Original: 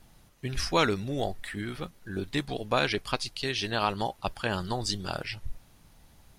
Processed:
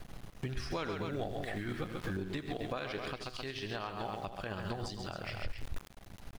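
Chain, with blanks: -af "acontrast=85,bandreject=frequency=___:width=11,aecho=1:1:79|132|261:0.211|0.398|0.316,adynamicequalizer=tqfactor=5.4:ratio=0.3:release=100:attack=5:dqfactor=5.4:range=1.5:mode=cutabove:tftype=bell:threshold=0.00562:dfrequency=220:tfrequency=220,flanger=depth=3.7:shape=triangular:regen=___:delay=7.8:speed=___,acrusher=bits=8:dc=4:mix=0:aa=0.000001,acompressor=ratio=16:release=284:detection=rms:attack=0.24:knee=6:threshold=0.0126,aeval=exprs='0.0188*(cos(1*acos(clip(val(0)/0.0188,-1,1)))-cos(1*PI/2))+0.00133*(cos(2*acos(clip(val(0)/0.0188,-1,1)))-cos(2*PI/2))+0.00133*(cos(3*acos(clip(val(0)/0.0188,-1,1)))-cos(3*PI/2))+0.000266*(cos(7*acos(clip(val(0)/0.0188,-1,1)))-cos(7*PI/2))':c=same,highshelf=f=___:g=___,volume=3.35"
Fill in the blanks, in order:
900, 89, 0.61, 4400, -11.5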